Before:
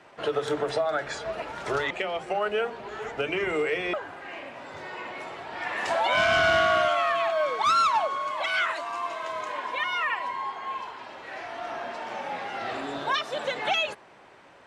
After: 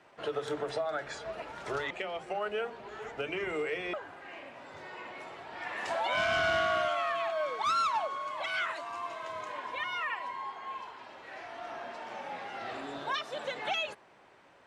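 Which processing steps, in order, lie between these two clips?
8.33–10 bell 80 Hz +8.5 dB 2 oct; gain -7 dB

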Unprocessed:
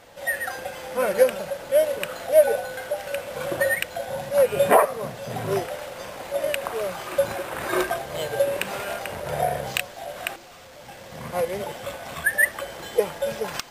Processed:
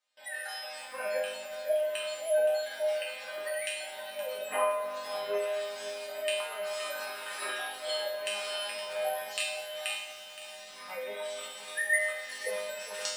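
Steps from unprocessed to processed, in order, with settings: notch 6200 Hz, Q 16; spectral gate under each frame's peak -30 dB strong; weighting filter ITU-R 468; gate with hold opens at -32 dBFS; dynamic EQ 600 Hz, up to +3 dB, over -34 dBFS, Q 0.72; in parallel at +2.5 dB: vocal rider within 5 dB 0.5 s; on the sum: resonator bank G3 major, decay 0.65 s; flutter echo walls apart 8.4 m, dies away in 0.31 s; on a send at -8.5 dB: reverb RT60 3.0 s, pre-delay 5 ms; on the sum: speed mistake 24 fps film run at 25 fps; lo-fi delay 0.52 s, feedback 35%, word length 8-bit, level -12 dB

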